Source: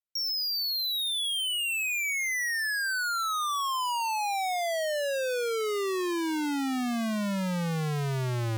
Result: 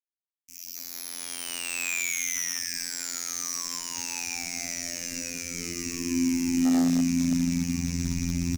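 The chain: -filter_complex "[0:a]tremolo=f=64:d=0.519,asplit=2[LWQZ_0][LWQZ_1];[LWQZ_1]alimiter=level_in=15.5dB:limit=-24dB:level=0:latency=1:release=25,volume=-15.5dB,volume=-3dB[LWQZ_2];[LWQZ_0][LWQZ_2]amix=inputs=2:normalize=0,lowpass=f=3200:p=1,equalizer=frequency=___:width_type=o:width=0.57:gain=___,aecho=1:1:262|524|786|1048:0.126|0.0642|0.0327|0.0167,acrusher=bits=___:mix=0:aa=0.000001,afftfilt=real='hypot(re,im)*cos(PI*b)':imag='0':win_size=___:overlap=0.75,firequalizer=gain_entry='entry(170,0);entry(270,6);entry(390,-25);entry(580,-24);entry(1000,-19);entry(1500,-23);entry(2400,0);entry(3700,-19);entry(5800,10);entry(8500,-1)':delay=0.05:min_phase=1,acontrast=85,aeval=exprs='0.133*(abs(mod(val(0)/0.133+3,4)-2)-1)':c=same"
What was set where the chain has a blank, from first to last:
160, -3, 4, 2048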